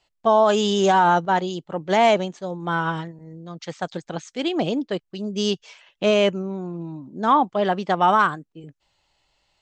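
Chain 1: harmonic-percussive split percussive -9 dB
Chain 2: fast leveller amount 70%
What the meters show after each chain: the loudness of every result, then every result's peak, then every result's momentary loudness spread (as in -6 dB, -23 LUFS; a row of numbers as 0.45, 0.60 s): -22.0, -18.0 LUFS; -7.5, -4.0 dBFS; 20, 8 LU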